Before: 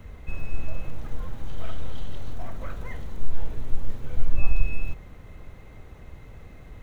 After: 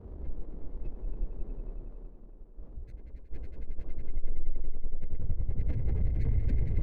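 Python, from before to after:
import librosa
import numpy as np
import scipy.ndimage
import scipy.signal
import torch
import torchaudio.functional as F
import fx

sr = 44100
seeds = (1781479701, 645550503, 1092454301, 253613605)

p1 = fx.recorder_agc(x, sr, target_db=-12.0, rise_db_per_s=51.0, max_gain_db=30)
p2 = fx.hum_notches(p1, sr, base_hz=50, count=4)
p3 = fx.spec_gate(p2, sr, threshold_db=-15, keep='strong')
p4 = fx.high_shelf(p3, sr, hz=2100.0, db=6.5)
p5 = p4 + fx.echo_swell(p4, sr, ms=92, loudest=5, wet_db=-10.0, dry=0)
p6 = fx.dmg_noise_band(p5, sr, seeds[0], low_hz=44.0, high_hz=500.0, level_db=-43.0)
p7 = 10.0 ** (-5.5 / 20.0) * np.tanh(p6 / 10.0 ** (-5.5 / 20.0))
p8 = fx.air_absorb(p7, sr, metres=380.0)
p9 = fx.running_max(p8, sr, window=17)
y = F.gain(torch.from_numpy(p9), -6.5).numpy()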